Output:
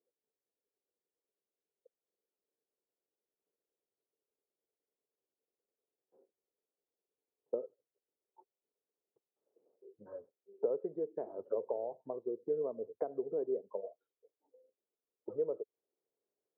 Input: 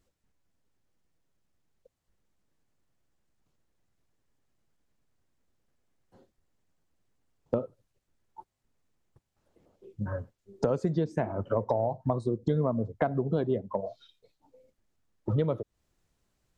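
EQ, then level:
four-pole ladder band-pass 480 Hz, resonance 65%
high-frequency loss of the air 440 metres
0.0 dB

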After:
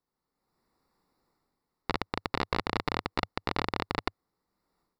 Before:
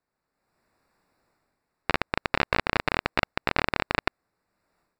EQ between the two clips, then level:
thirty-one-band graphic EQ 100 Hz −7 dB, 630 Hz −9 dB, 1,600 Hz −11 dB, 2,500 Hz −11 dB, 8,000 Hz −7 dB
−1.5 dB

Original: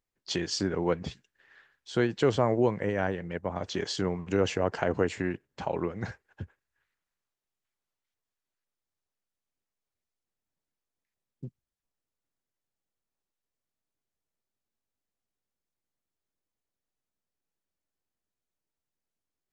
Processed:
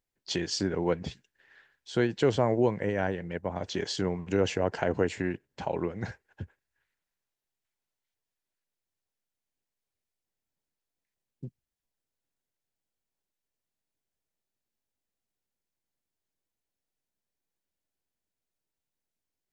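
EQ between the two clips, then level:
parametric band 1,200 Hz −6.5 dB 0.25 octaves
0.0 dB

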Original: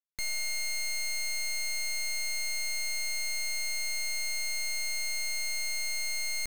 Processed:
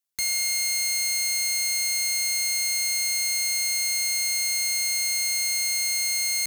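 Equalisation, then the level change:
high-pass filter 48 Hz
high-shelf EQ 3,500 Hz +10 dB
+2.5 dB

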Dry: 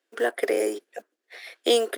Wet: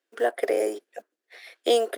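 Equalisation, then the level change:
dynamic equaliser 650 Hz, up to +8 dB, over −38 dBFS, Q 1.6
−4.0 dB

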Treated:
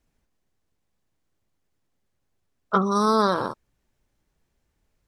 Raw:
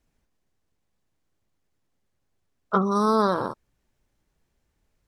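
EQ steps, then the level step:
dynamic equaliser 6,700 Hz, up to +5 dB, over −47 dBFS, Q 0.94
dynamic equaliser 2,600 Hz, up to +6 dB, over −40 dBFS, Q 1
0.0 dB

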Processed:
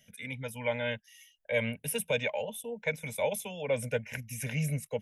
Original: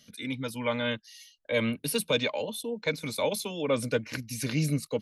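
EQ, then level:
phaser with its sweep stopped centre 1,200 Hz, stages 6
0.0 dB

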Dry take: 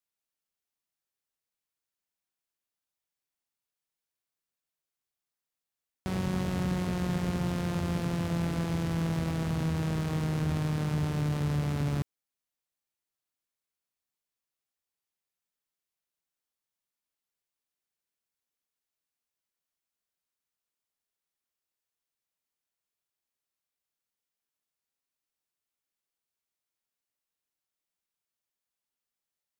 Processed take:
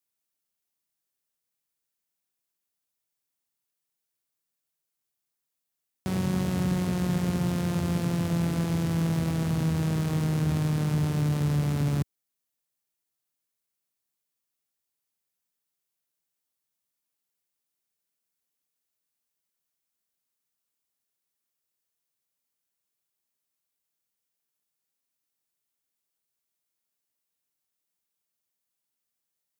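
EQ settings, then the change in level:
high-pass filter 91 Hz
low-shelf EQ 350 Hz +5.5 dB
high-shelf EQ 5,900 Hz +8 dB
0.0 dB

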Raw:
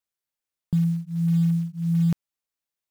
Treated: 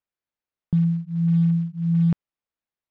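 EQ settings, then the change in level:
low-pass filter 2,500 Hz 6 dB per octave
high-frequency loss of the air 110 metres
+2.0 dB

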